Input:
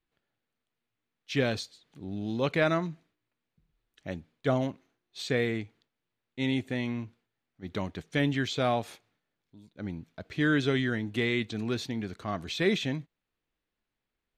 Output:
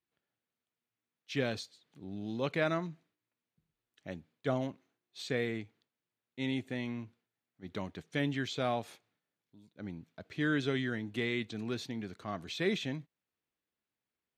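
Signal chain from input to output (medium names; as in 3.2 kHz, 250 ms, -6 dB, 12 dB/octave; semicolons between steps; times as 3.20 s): high-pass 95 Hz; trim -5.5 dB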